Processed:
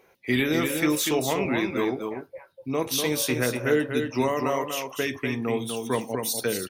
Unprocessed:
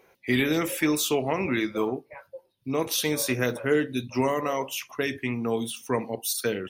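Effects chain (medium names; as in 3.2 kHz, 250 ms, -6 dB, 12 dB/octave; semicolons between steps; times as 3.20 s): delay 245 ms -5.5 dB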